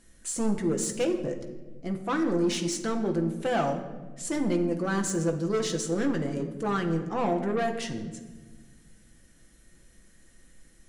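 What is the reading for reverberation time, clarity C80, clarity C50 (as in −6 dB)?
1.4 s, 11.0 dB, 9.0 dB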